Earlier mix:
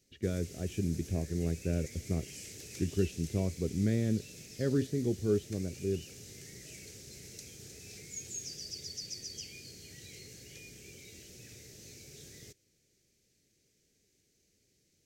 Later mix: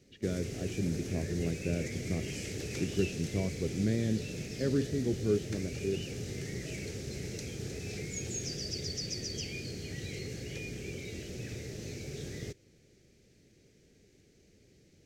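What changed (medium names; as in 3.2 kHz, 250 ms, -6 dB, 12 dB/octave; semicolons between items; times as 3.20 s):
speech: add high-pass 98 Hz; background: remove pre-emphasis filter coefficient 0.8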